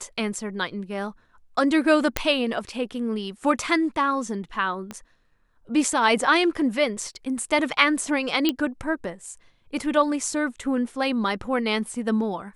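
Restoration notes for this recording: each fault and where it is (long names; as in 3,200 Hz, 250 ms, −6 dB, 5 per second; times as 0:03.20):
0:02.17: click −5 dBFS
0:04.91: click −19 dBFS
0:08.49: click −8 dBFS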